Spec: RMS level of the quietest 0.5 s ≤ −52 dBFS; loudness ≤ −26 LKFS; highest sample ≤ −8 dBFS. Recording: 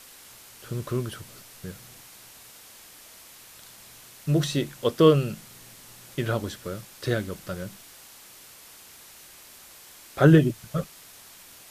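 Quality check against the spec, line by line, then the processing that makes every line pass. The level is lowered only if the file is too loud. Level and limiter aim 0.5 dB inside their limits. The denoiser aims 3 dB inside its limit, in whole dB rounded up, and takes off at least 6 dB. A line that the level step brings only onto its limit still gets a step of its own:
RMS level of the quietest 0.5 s −49 dBFS: out of spec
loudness −25.0 LKFS: out of spec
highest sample −3.5 dBFS: out of spec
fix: broadband denoise 6 dB, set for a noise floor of −49 dBFS
level −1.5 dB
brickwall limiter −8.5 dBFS

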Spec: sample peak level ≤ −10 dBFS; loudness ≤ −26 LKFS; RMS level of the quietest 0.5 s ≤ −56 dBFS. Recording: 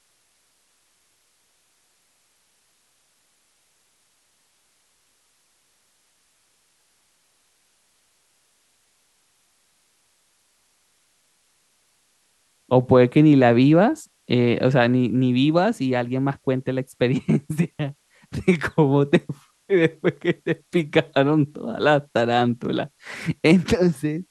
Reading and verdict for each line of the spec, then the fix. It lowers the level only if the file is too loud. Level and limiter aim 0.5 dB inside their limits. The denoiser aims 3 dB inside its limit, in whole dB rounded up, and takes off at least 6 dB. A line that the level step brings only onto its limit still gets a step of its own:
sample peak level −3.5 dBFS: out of spec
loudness −20.5 LKFS: out of spec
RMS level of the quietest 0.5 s −65 dBFS: in spec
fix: level −6 dB
brickwall limiter −10.5 dBFS

